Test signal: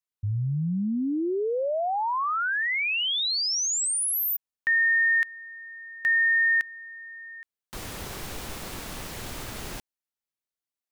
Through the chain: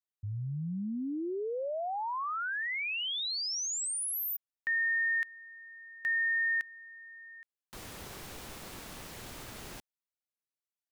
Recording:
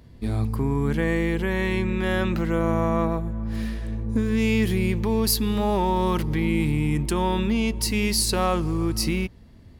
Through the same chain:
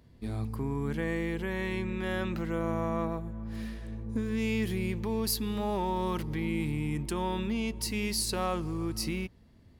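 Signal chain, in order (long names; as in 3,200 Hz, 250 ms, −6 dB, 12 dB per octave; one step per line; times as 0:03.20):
low-shelf EQ 62 Hz −5.5 dB
level −8 dB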